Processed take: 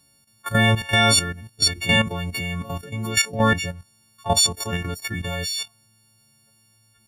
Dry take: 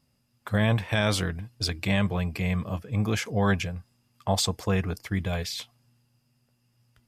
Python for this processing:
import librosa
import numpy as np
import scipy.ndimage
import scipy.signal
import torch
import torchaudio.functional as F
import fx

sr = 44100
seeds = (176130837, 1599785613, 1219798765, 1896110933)

y = fx.freq_snap(x, sr, grid_st=4)
y = fx.level_steps(y, sr, step_db=11)
y = y * 10.0 ** (6.0 / 20.0)